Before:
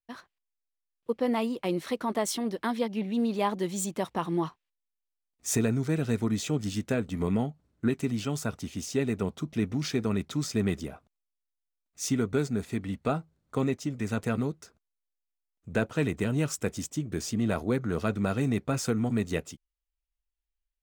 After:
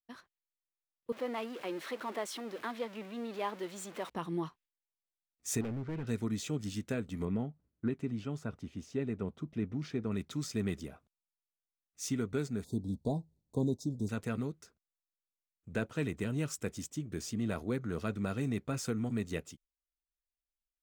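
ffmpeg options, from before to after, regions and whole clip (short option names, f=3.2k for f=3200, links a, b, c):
-filter_complex "[0:a]asettb=1/sr,asplit=3[a][b][c];[a]atrim=end=1.124[d];[b]atrim=start=1.12:end=4.1,asetpts=PTS-STARTPTS,afade=t=in:d=0.004:c=qsin,afade=t=out:st=2.976:d=0.004:c=qsin,aeval=exprs='val(0)+0.5*0.0211*sgn(val(0))':c=same,highpass=160,bass=f=250:g=-15,treble=f=4k:g=-9[e];[c]atrim=start=4.096[f];[d][e]acrossfade=d=0.004:c1=hsin:c2=qsin[g];[g][f]acrossfade=d=0.004:c1=qsin:c2=hsin,asettb=1/sr,asplit=3[h][i][j];[h]atrim=end=5.614[k];[i]atrim=start=5.61:end=6.07,asetpts=PTS-STARTPTS,afade=t=in:d=0.004:c=qsin,afade=t=out:st=0.456:d=0.004:c=qsin,lowpass=2k,asoftclip=type=hard:threshold=-27.5dB[l];[j]atrim=start=6.066[m];[k][l]acrossfade=d=0.004:c1=hsin:c2=qsin[n];[n][m]acrossfade=d=0.004:c1=qsin:c2=hsin,asettb=1/sr,asplit=3[o][p][q];[o]atrim=end=7.254[r];[p]atrim=start=7.25:end=10.12,asetpts=PTS-STARTPTS,afade=t=in:d=0.004:c=qsin,afade=t=out:st=2.866:d=0.004:c=qsin,lowpass=f=1.5k:p=1,asoftclip=type=hard:threshold=-16dB[s];[q]atrim=start=10.116[t];[r][s]acrossfade=d=0.004:c1=hsin:c2=qsin[u];[u][t]acrossfade=d=0.004:c1=qsin:c2=hsin,asettb=1/sr,asplit=3[v][w][x];[v]atrim=end=12.644[y];[w]atrim=start=12.64:end=14.09,asetpts=PTS-STARTPTS,afade=t=in:d=0.004:c=qsin,afade=t=out:st=1.446:d=0.004:c=qsin,asuperstop=centerf=1900:order=20:qfactor=0.74,lowshelf=f=340:g=5[z];[x]atrim=start=14.086[aa];[y][z]acrossfade=d=0.004:c1=hsin:c2=qsin[ab];[ab][aa]acrossfade=d=0.004:c1=qsin:c2=hsin,agate=range=-6dB:threshold=-55dB:ratio=16:detection=peak,equalizer=f=770:w=1.5:g=-3.5,volume=-6.5dB"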